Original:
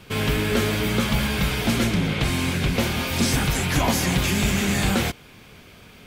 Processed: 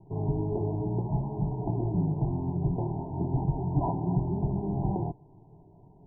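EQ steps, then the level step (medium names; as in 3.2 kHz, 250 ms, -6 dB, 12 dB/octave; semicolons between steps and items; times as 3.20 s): Chebyshev low-pass 1 kHz, order 10; bass shelf 410 Hz +5 dB; static phaser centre 340 Hz, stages 8; -5.5 dB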